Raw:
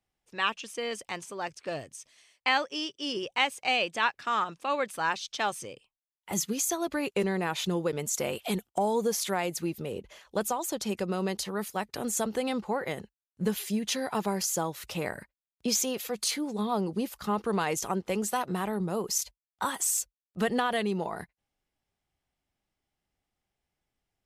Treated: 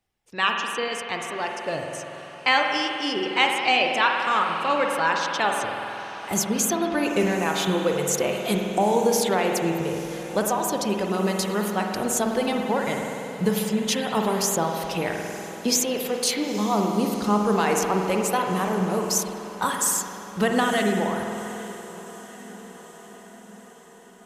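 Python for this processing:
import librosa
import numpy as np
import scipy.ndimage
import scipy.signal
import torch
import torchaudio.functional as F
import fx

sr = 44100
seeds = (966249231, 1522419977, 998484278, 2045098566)

y = fx.dereverb_blind(x, sr, rt60_s=0.8)
y = fx.echo_diffused(y, sr, ms=891, feedback_pct=60, wet_db=-16.0)
y = fx.rev_spring(y, sr, rt60_s=2.5, pass_ms=(48,), chirp_ms=60, drr_db=1.5)
y = y * 10.0 ** (5.5 / 20.0)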